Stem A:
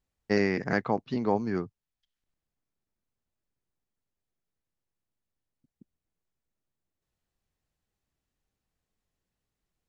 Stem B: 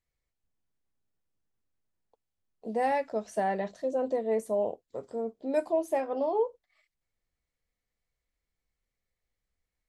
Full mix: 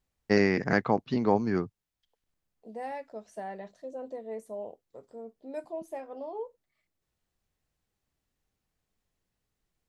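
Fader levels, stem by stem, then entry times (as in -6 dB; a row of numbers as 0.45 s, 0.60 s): +2.0 dB, -10.0 dB; 0.00 s, 0.00 s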